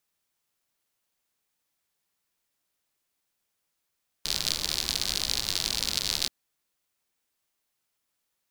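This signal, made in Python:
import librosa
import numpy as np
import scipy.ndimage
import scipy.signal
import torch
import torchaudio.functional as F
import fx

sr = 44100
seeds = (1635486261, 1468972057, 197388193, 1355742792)

y = fx.rain(sr, seeds[0], length_s=2.03, drops_per_s=82.0, hz=4300.0, bed_db=-9.5)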